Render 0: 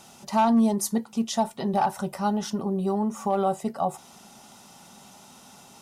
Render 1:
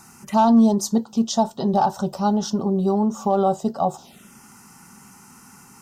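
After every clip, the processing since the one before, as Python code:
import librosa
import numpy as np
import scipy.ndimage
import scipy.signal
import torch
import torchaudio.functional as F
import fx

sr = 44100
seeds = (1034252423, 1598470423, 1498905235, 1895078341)

y = fx.env_phaser(x, sr, low_hz=530.0, high_hz=2200.0, full_db=-27.5)
y = y * 10.0 ** (6.0 / 20.0)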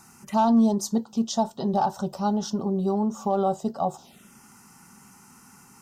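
y = fx.end_taper(x, sr, db_per_s=560.0)
y = y * 10.0 ** (-4.5 / 20.0)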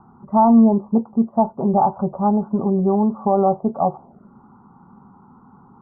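y = scipy.signal.sosfilt(scipy.signal.butter(8, 1200.0, 'lowpass', fs=sr, output='sos'), x)
y = y * 10.0 ** (7.0 / 20.0)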